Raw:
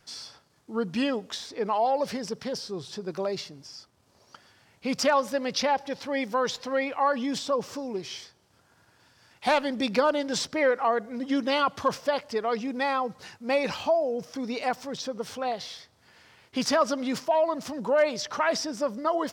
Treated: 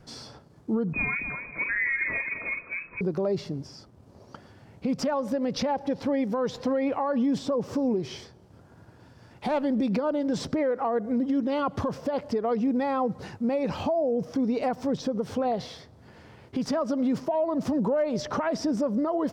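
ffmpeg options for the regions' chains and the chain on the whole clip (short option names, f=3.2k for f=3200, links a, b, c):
-filter_complex "[0:a]asettb=1/sr,asplit=3[a][b][c];[a]atrim=end=0.934[d];[b]atrim=start=0.93:end=3.01,asetpts=PTS-STARTPTS,afade=t=in:d=0.004:c=qsin,afade=t=out:st=2.076:d=0.004:c=qsin,bandreject=f=1.9k:w=5.8,lowpass=f=2.3k:t=q:w=0.5098,lowpass=f=2.3k:t=q:w=0.6013,lowpass=f=2.3k:t=q:w=0.9,lowpass=f=2.3k:t=q:w=2.563,afreqshift=-2700,aecho=1:1:44|253|465:0.422|0.398|0.126,atrim=end_sample=91728[e];[c]atrim=start=3.006[f];[d][e]acrossfade=d=0.004:c1=hsin:c2=qsin[g];[g][f]acrossfade=d=0.004:c1=qsin:c2=hsin,tiltshelf=f=920:g=10,acompressor=threshold=-25dB:ratio=6,alimiter=level_in=0.5dB:limit=-24dB:level=0:latency=1:release=124,volume=-0.5dB,volume=5.5dB"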